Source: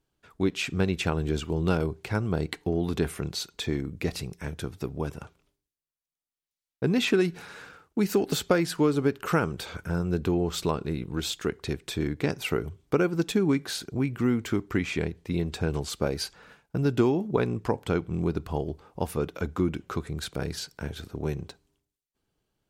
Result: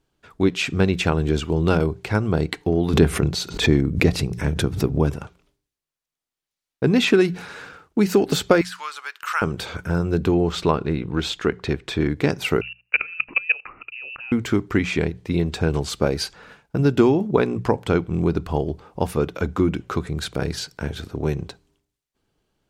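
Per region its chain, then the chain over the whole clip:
0:02.93–0:05.16: low-shelf EQ 450 Hz +6.5 dB + mains-hum notches 60/120/180 Hz + background raised ahead of every attack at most 110 dB per second
0:08.61–0:09.42: high-pass filter 1,100 Hz 24 dB per octave + de-essing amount 80%
0:10.52–0:12.10: low-pass filter 3,500 Hz 6 dB per octave + parametric band 1,700 Hz +3 dB 2.8 octaves
0:12.61–0:14.32: output level in coarse steps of 21 dB + voice inversion scrambler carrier 2,800 Hz
whole clip: high-shelf EQ 10,000 Hz −8.5 dB; mains-hum notches 60/120/180 Hz; level +7 dB

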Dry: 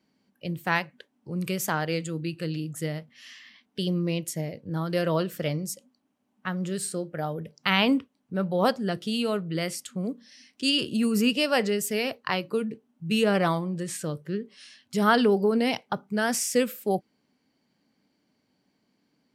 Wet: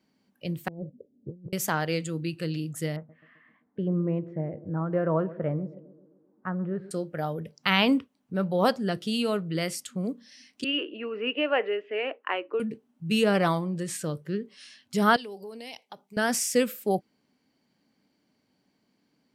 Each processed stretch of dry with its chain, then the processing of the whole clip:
0:00.68–0:01.53: Butterworth low-pass 550 Hz 48 dB per octave + compressor whose output falls as the input rises −38 dBFS, ratio −0.5
0:02.96–0:06.91: low-pass filter 1,500 Hz 24 dB per octave + feedback echo with a band-pass in the loop 130 ms, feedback 65%, band-pass 330 Hz, level −15 dB
0:10.64–0:12.60: Chebyshev band-pass filter 300–2,900 Hz, order 4 + high-frequency loss of the air 120 metres
0:15.16–0:16.17: high-pass filter 1,100 Hz 6 dB per octave + parametric band 1,400 Hz −13 dB 0.69 octaves + downward compressor 2 to 1, threshold −43 dBFS
whole clip: no processing

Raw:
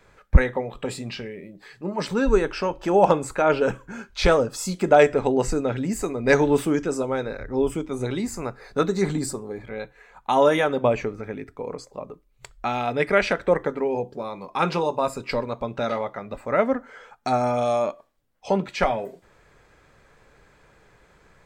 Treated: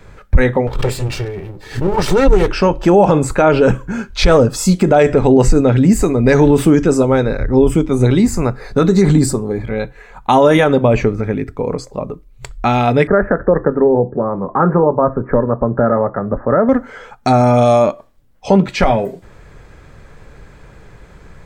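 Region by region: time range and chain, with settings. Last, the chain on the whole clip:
0:00.67–0:02.48: lower of the sound and its delayed copy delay 2.2 ms + background raised ahead of every attack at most 110 dB per second
0:13.07–0:16.69: Chebyshev low-pass with heavy ripple 1,800 Hz, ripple 3 dB + multiband upward and downward compressor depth 40%
whole clip: low-shelf EQ 250 Hz +11.5 dB; boost into a limiter +10.5 dB; level −1 dB

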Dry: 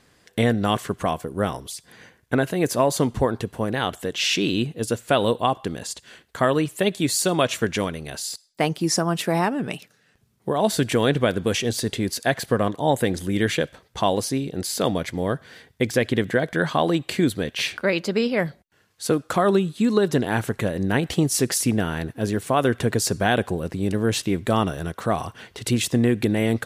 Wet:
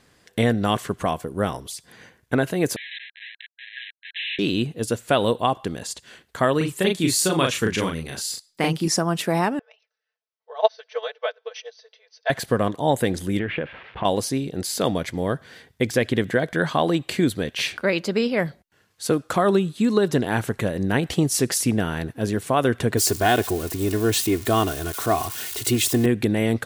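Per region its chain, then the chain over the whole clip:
0:02.76–0:04.39: comparator with hysteresis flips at −28.5 dBFS + linear-phase brick-wall band-pass 1,600–4,100 Hz + high-shelf EQ 3,100 Hz −8 dB
0:06.57–0:08.88: parametric band 650 Hz −7.5 dB 0.4 octaves + double-tracking delay 37 ms −3 dB
0:09.59–0:12.30: linear-phase brick-wall band-pass 440–6,200 Hz + comb filter 4.6 ms, depth 98% + expander for the loud parts 2.5 to 1, over −28 dBFS
0:13.39–0:14.05: spike at every zero crossing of −20.5 dBFS + Butterworth low-pass 2,700 Hz + downward compressor 5 to 1, threshold −21 dBFS
0:22.97–0:26.06: spike at every zero crossing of −23.5 dBFS + comb filter 2.8 ms, depth 63%
whole clip: no processing

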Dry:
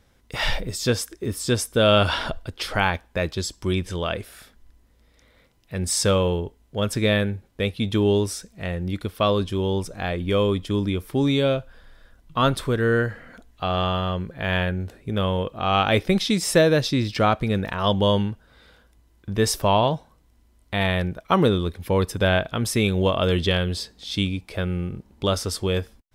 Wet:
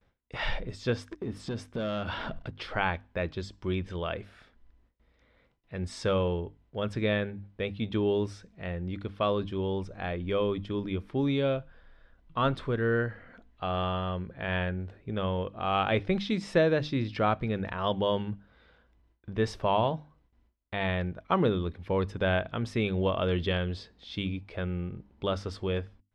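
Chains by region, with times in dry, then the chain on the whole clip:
0:01.10–0:02.56: parametric band 210 Hz +6.5 dB 1.2 octaves + leveller curve on the samples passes 2 + downward compressor 4 to 1, threshold −26 dBFS
whole clip: low-pass filter 3,000 Hz 12 dB per octave; mains-hum notches 50/100/150/200/250/300 Hz; noise gate with hold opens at −51 dBFS; level −6.5 dB

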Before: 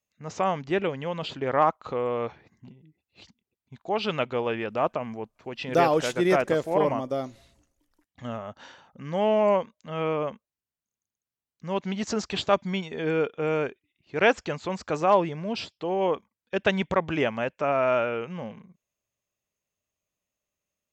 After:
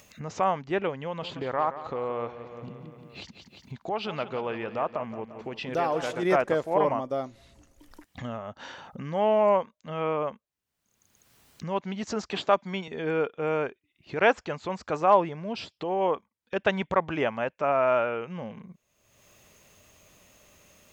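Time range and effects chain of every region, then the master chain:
0:01.04–0:06.23: downward compressor 2 to 1, threshold −26 dBFS + repeating echo 175 ms, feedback 46%, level −12 dB
0:12.31–0:12.88: high-pass filter 180 Hz + multiband upward and downward compressor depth 40%
whole clip: dynamic equaliser 970 Hz, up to +6 dB, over −34 dBFS, Q 0.74; upward compression, threshold −25 dBFS; high-shelf EQ 5,600 Hz −4 dB; level −4 dB

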